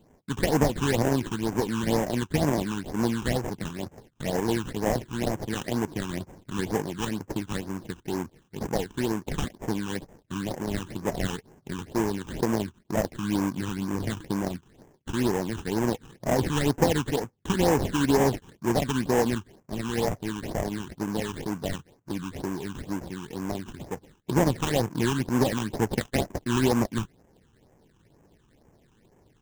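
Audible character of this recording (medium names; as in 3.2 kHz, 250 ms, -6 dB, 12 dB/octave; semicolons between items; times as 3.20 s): aliases and images of a low sample rate 1.3 kHz, jitter 20%; phasing stages 8, 2.1 Hz, lowest notch 580–4100 Hz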